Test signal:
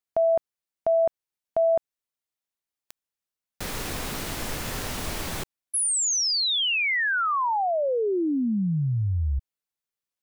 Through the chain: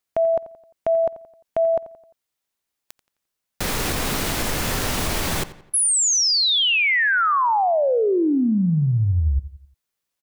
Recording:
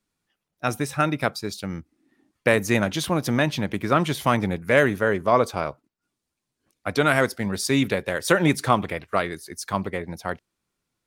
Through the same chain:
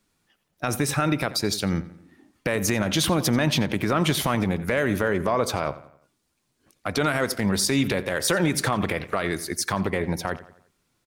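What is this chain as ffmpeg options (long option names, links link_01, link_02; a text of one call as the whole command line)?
ffmpeg -i in.wav -filter_complex "[0:a]acompressor=threshold=-26dB:ratio=3:attack=1.5:release=79:knee=1:detection=rms,alimiter=limit=-21dB:level=0:latency=1:release=61,asplit=2[link_01][link_02];[link_02]adelay=87,lowpass=frequency=4000:poles=1,volume=-15.5dB,asplit=2[link_03][link_04];[link_04]adelay=87,lowpass=frequency=4000:poles=1,volume=0.46,asplit=2[link_05][link_06];[link_06]adelay=87,lowpass=frequency=4000:poles=1,volume=0.46,asplit=2[link_07][link_08];[link_08]adelay=87,lowpass=frequency=4000:poles=1,volume=0.46[link_09];[link_01][link_03][link_05][link_07][link_09]amix=inputs=5:normalize=0,volume=8.5dB" out.wav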